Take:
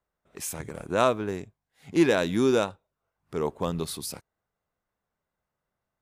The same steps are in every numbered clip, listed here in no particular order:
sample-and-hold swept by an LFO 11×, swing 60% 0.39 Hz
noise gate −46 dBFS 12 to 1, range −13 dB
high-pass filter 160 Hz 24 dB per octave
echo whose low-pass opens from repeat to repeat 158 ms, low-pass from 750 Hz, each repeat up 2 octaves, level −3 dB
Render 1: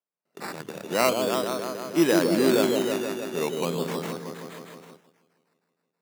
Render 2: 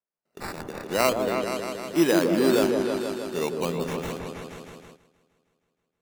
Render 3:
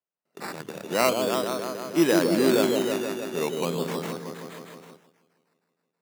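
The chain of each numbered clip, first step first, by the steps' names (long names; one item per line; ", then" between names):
echo whose low-pass opens from repeat to repeat, then sample-and-hold swept by an LFO, then noise gate, then high-pass filter
high-pass filter, then sample-and-hold swept by an LFO, then echo whose low-pass opens from repeat to repeat, then noise gate
echo whose low-pass opens from repeat to repeat, then noise gate, then sample-and-hold swept by an LFO, then high-pass filter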